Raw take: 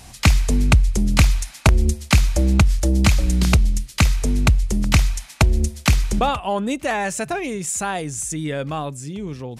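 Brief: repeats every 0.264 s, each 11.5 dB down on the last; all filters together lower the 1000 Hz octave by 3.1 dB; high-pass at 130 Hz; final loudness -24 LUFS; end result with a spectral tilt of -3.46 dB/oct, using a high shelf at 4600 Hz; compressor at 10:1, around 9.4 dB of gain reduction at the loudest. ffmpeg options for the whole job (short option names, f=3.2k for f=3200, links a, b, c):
-af "highpass=130,equalizer=f=1k:t=o:g=-4.5,highshelf=f=4.6k:g=4,acompressor=threshold=-22dB:ratio=10,aecho=1:1:264|528|792:0.266|0.0718|0.0194,volume=3dB"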